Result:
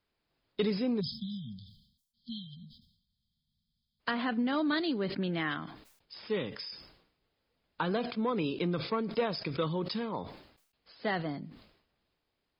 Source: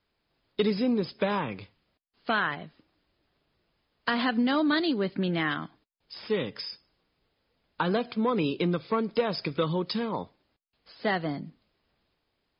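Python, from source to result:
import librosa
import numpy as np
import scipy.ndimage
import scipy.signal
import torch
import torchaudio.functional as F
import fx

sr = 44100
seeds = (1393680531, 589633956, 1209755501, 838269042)

y = fx.spec_erase(x, sr, start_s=1.0, length_s=3.0, low_hz=240.0, high_hz=3100.0)
y = fx.air_absorb(y, sr, metres=190.0, at=(4.11, 4.53))
y = fx.sustainer(y, sr, db_per_s=81.0)
y = y * 10.0 ** (-5.0 / 20.0)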